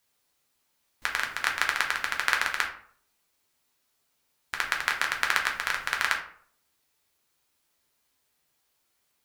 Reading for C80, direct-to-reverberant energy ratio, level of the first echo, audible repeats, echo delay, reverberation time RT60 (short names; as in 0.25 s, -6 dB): 12.0 dB, 0.0 dB, none, none, none, 0.55 s